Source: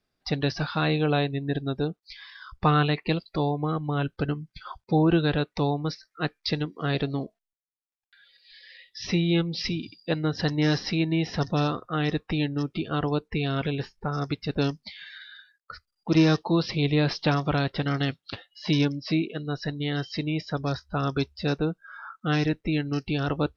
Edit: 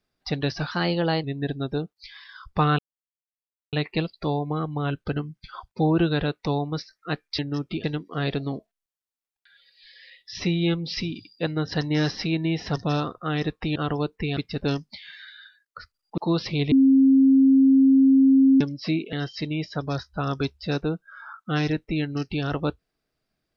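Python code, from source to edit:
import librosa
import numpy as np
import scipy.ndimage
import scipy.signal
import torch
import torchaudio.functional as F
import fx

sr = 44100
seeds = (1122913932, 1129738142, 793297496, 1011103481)

y = fx.edit(x, sr, fx.speed_span(start_s=0.71, length_s=0.59, speed=1.12),
    fx.insert_silence(at_s=2.85, length_s=0.94),
    fx.move(start_s=12.43, length_s=0.45, to_s=6.51),
    fx.cut(start_s=13.49, length_s=0.81),
    fx.cut(start_s=16.11, length_s=0.3),
    fx.bleep(start_s=16.95, length_s=1.89, hz=268.0, db=-12.5),
    fx.cut(start_s=19.36, length_s=0.53), tone=tone)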